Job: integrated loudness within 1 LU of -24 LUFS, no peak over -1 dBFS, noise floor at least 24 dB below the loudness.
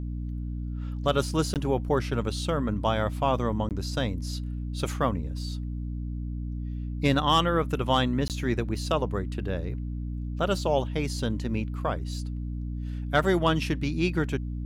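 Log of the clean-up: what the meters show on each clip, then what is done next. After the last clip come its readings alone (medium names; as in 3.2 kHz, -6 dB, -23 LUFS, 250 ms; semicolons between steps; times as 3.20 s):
dropouts 3; longest dropout 18 ms; hum 60 Hz; highest harmonic 300 Hz; hum level -30 dBFS; loudness -28.5 LUFS; peak level -11.0 dBFS; loudness target -24.0 LUFS
-> interpolate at 1.54/3.69/8.28 s, 18 ms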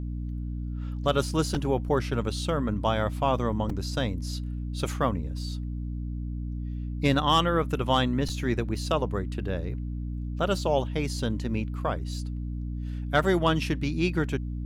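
dropouts 0; hum 60 Hz; highest harmonic 300 Hz; hum level -30 dBFS
-> hum notches 60/120/180/240/300 Hz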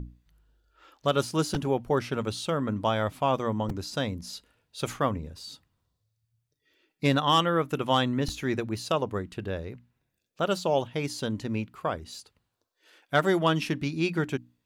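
hum not found; loudness -28.5 LUFS; peak level -11.5 dBFS; loudness target -24.0 LUFS
-> trim +4.5 dB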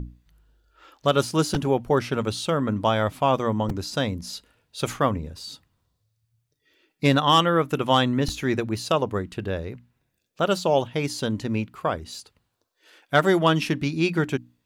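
loudness -24.0 LUFS; peak level -7.0 dBFS; noise floor -75 dBFS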